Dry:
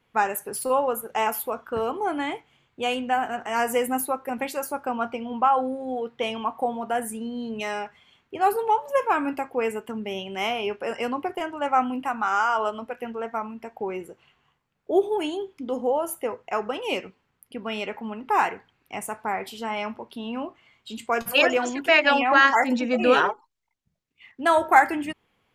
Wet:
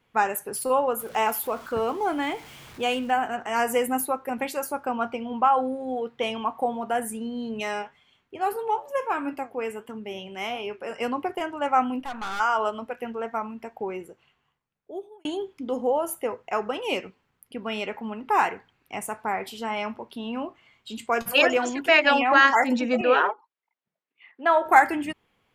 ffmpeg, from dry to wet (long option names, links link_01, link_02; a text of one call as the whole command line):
ffmpeg -i in.wav -filter_complex "[0:a]asettb=1/sr,asplit=3[link_01][link_02][link_03];[link_01]atrim=end=0.994[link_04];[link_02]atrim=start=0.99:end=3.11,asetpts=PTS-STARTPTS,afade=type=in:duration=0.004:curve=qsin,afade=type=out:start_time=2.116:duration=0.004:curve=qsin,aeval=exprs='val(0)+0.5*0.00891*sgn(val(0))':channel_layout=same[link_05];[link_03]atrim=start=3.106[link_06];[link_04][link_05]acrossfade=duration=0.004:curve1=hsin:curve2=qsin[link_07];[link_07][link_06]acrossfade=duration=0.004:curve1=qsin:curve2=hsin,asplit=3[link_08][link_09][link_10];[link_08]afade=type=out:start_time=7.81:duration=0.02[link_11];[link_09]flanger=delay=6.6:depth=4.9:regen=75:speed=1.5:shape=sinusoidal,afade=type=in:start_time=7.81:duration=0.02,afade=type=out:start_time=11:duration=0.02[link_12];[link_10]afade=type=in:start_time=11:duration=0.02[link_13];[link_11][link_12][link_13]amix=inputs=3:normalize=0,asplit=3[link_14][link_15][link_16];[link_14]afade=type=out:start_time=11.99:duration=0.02[link_17];[link_15]aeval=exprs='(tanh(28.2*val(0)+0.65)-tanh(0.65))/28.2':channel_layout=same,afade=type=in:start_time=11.99:duration=0.02,afade=type=out:start_time=12.39:duration=0.02[link_18];[link_16]afade=type=in:start_time=12.39:duration=0.02[link_19];[link_17][link_18][link_19]amix=inputs=3:normalize=0,asettb=1/sr,asplit=3[link_20][link_21][link_22];[link_20]atrim=end=23.014[link_23];[link_21]atrim=start=23.01:end=24.66,asetpts=PTS-STARTPTS,afade=type=in:duration=0.004:curve=qsin,afade=type=out:start_time=1.646:duration=0.004:curve=qsin,highpass=400,lowpass=2600[link_24];[link_22]atrim=start=24.656[link_25];[link_23][link_24]acrossfade=duration=0.004:curve1=hsin:curve2=qsin[link_26];[link_26][link_25]acrossfade=duration=0.004:curve1=qsin:curve2=hsin,asplit=2[link_27][link_28];[link_27]atrim=end=15.25,asetpts=PTS-STARTPTS,afade=type=out:start_time=13.65:duration=1.6[link_29];[link_28]atrim=start=15.25,asetpts=PTS-STARTPTS,afade=type=in:duration=0.004:curve=hsin[link_30];[link_29][link_30]concat=n=2:v=0:a=1" out.wav